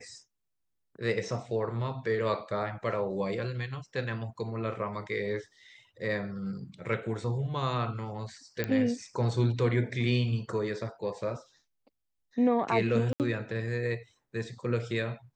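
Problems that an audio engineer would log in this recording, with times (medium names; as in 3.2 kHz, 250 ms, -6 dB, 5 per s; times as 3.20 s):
8.64 s: pop -16 dBFS
13.13–13.20 s: dropout 68 ms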